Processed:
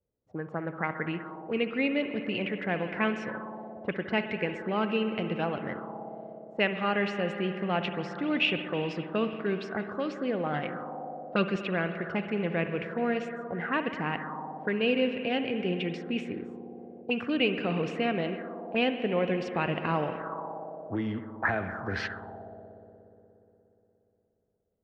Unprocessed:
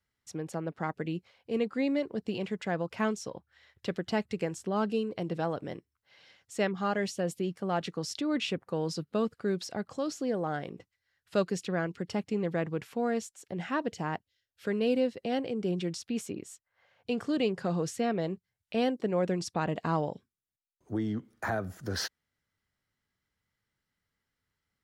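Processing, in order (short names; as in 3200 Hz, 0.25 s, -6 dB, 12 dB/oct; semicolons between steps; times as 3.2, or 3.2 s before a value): 10.53–11.56 comb 5.8 ms, depth 75%; spring tank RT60 3.6 s, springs 59 ms, chirp 75 ms, DRR 6.5 dB; envelope low-pass 510–2600 Hz up, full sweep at -28.5 dBFS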